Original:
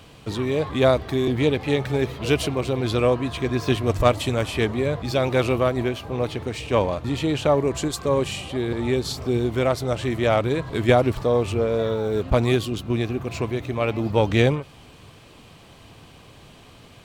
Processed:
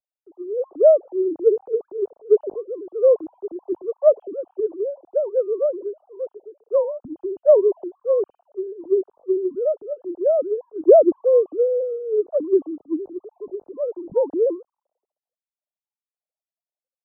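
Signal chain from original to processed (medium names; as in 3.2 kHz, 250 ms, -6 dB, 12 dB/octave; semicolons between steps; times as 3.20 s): formants replaced by sine waves; inverse Chebyshev low-pass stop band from 1.9 kHz, stop band 50 dB; three bands expanded up and down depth 100%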